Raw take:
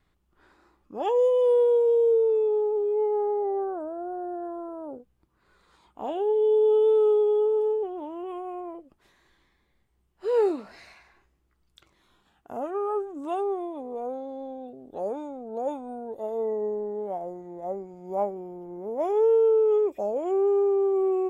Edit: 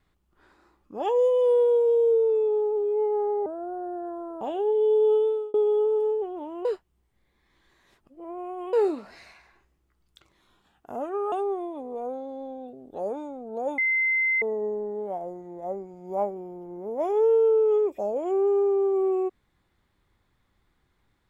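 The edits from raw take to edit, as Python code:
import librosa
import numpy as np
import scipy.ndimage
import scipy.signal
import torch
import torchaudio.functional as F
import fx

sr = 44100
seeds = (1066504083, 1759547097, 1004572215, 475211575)

y = fx.edit(x, sr, fx.cut(start_s=3.46, length_s=0.38),
    fx.cut(start_s=4.79, length_s=1.23),
    fx.fade_out_span(start_s=6.74, length_s=0.41),
    fx.reverse_span(start_s=8.26, length_s=2.08),
    fx.cut(start_s=12.93, length_s=0.39),
    fx.bleep(start_s=15.78, length_s=0.64, hz=2070.0, db=-20.5), tone=tone)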